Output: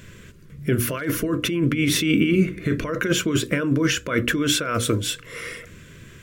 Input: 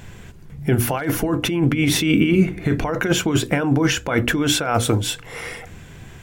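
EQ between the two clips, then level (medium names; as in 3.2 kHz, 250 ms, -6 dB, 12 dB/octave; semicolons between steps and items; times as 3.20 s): Butterworth band-stop 800 Hz, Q 1.7; bass shelf 100 Hz -7 dB; -1.5 dB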